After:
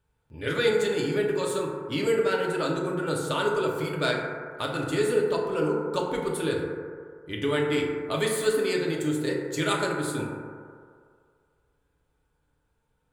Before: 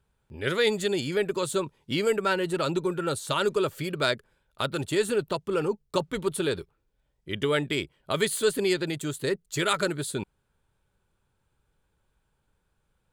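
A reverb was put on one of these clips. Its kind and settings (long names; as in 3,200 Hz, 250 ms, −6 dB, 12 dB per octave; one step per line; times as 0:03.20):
feedback delay network reverb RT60 2.1 s, low-frequency decay 0.7×, high-frequency decay 0.25×, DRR −2.5 dB
level −4 dB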